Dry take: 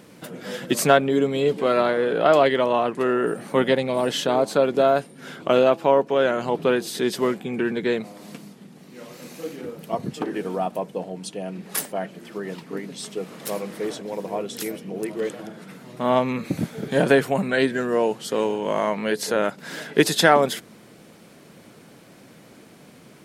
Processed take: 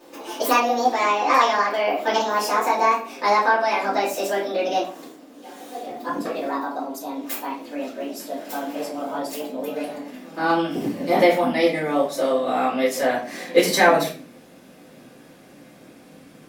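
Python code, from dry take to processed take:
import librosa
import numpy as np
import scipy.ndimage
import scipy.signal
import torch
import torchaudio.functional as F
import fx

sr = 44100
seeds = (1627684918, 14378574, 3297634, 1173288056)

y = fx.speed_glide(x, sr, from_pct=177, to_pct=105)
y = fx.low_shelf(y, sr, hz=67.0, db=-7.0)
y = fx.room_shoebox(y, sr, seeds[0], volume_m3=33.0, walls='mixed', distance_m=2.0)
y = y * 10.0 ** (-11.0 / 20.0)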